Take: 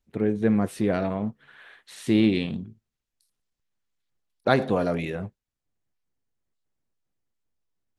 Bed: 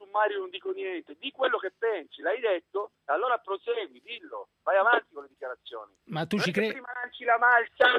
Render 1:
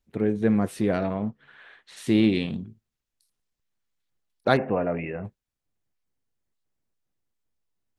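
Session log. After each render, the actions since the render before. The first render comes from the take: 0.98–1.97 air absorption 63 m; 4.57–5.25 rippled Chebyshev low-pass 2800 Hz, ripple 3 dB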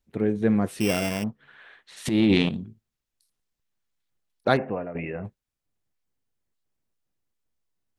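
0.8–1.24 sample sorter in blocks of 16 samples; 2.05–2.49 transient shaper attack -8 dB, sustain +11 dB; 4.49–4.95 fade out, to -12 dB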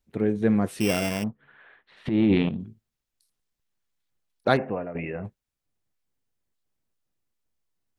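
1.28–2.6 air absorption 410 m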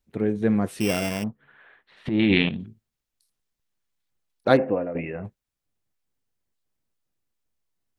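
2.19–2.66 band shelf 2600 Hz +11 dB; 4.5–5.02 small resonant body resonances 300/510 Hz, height 10 dB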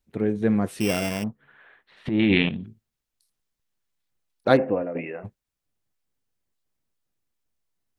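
2.11–2.64 LPF 3900 Hz 24 dB/oct; 4.82–5.23 HPF 110 Hz -> 400 Hz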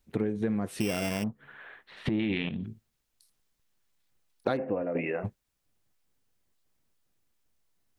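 in parallel at -2 dB: limiter -12.5 dBFS, peak gain reduction 9.5 dB; on the sum: compressor 8:1, threshold -26 dBFS, peak gain reduction 17 dB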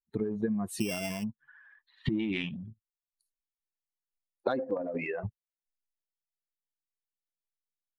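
per-bin expansion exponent 2; transient shaper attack +3 dB, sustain +8 dB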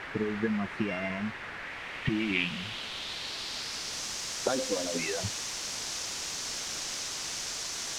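requantised 6-bit, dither triangular; low-pass sweep 1900 Hz -> 6000 Hz, 1.57–4.1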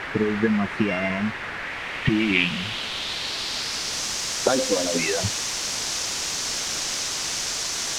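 gain +8.5 dB

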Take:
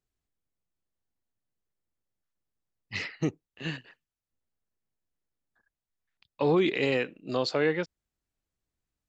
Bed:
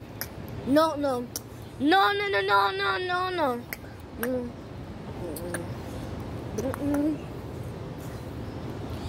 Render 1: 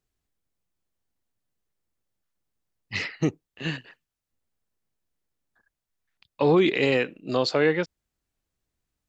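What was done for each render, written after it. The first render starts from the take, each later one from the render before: gain +4.5 dB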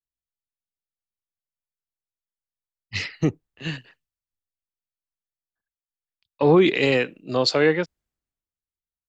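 in parallel at -3 dB: compressor, threshold -31 dBFS, peak gain reduction 14.5 dB; on the sum: three-band expander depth 70%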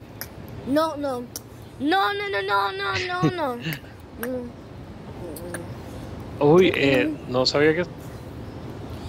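add bed 0 dB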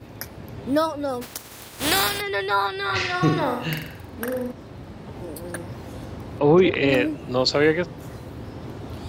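1.21–2.2 spectral contrast lowered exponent 0.37; 2.85–4.52 flutter echo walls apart 7.7 m, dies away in 0.62 s; 6.39–6.89 air absorption 130 m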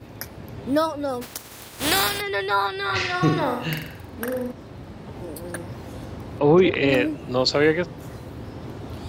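nothing audible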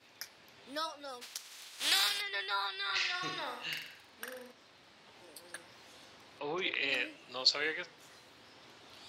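band-pass 4100 Hz, Q 0.82; flange 0.93 Hz, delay 7.4 ms, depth 5.7 ms, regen -83%

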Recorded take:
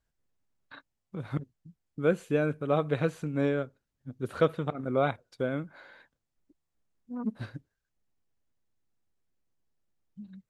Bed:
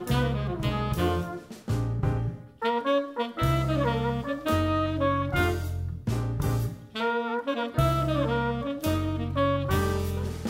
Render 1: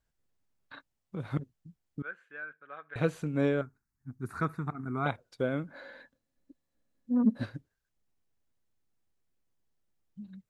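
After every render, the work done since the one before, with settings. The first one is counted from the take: 2.02–2.96 band-pass 1600 Hz, Q 6.4; 3.61–5.06 fixed phaser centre 1300 Hz, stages 4; 5.68–7.45 small resonant body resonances 260/530/1700/4000 Hz, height 12 dB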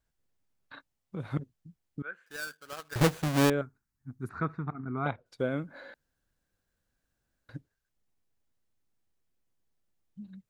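2.26–3.5 half-waves squared off; 4.29–5.26 air absorption 190 m; 5.94–7.49 room tone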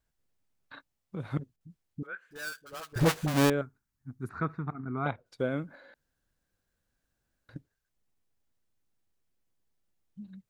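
1.56–3.34 dispersion highs, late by 47 ms, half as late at 590 Hz; 5.75–7.56 compressor, threshold -51 dBFS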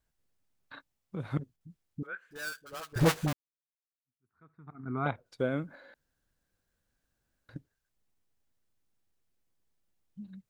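3.33–4.9 fade in exponential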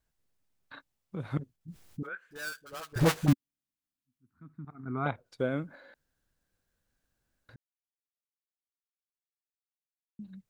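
1.68–2.09 fast leveller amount 50%; 3.28–4.65 resonant low shelf 350 Hz +9 dB, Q 3; 7.56–10.19 mute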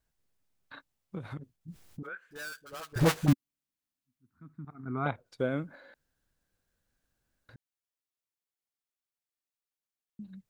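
1.18–2.92 compressor, threshold -36 dBFS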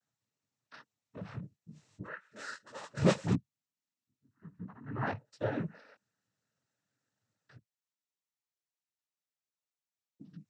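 chorus 0.39 Hz, delay 17 ms, depth 3.9 ms; noise vocoder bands 12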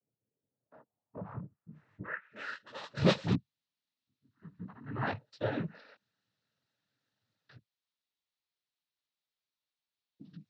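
low-pass sweep 450 Hz -> 4000 Hz, 0.39–2.86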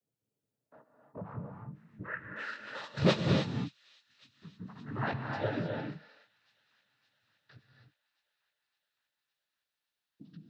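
thin delay 0.565 s, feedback 67%, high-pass 2600 Hz, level -21.5 dB; non-linear reverb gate 0.33 s rising, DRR 3 dB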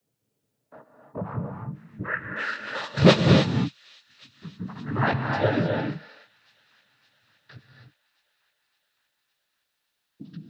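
gain +10.5 dB

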